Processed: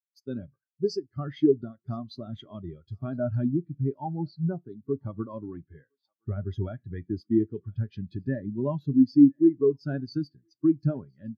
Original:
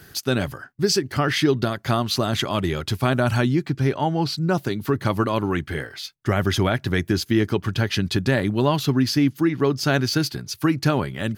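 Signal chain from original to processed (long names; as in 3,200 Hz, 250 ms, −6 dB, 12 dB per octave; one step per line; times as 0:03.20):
noise gate −32 dBFS, range −7 dB
high-shelf EQ 7,800 Hz +6.5 dB
feedback echo with a high-pass in the loop 1,015 ms, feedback 51%, high-pass 710 Hz, level −14.5 dB
on a send at −12.5 dB: convolution reverb RT60 0.50 s, pre-delay 3 ms
on the sum: every bin expanded away from the loudest bin 2.5 to 1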